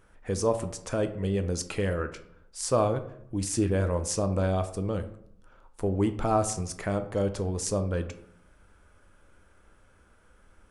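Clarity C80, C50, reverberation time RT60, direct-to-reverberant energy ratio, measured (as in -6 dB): 15.5 dB, 12.5 dB, 0.70 s, 8.0 dB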